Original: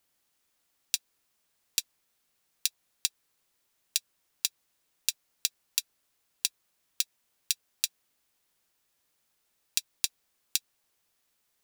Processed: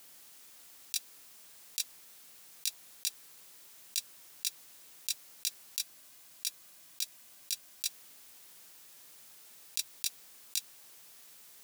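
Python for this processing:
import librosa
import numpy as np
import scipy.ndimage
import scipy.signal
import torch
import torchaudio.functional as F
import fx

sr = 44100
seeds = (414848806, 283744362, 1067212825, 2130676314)

y = scipy.signal.sosfilt(scipy.signal.butter(2, 96.0, 'highpass', fs=sr, output='sos'), x)
y = fx.high_shelf(y, sr, hz=3900.0, db=5.0)
y = fx.over_compress(y, sr, threshold_db=-31.0, ratio=-0.5)
y = fx.notch_comb(y, sr, f0_hz=450.0, at=(5.79, 7.85))
y = y * 10.0 ** (4.0 / 20.0)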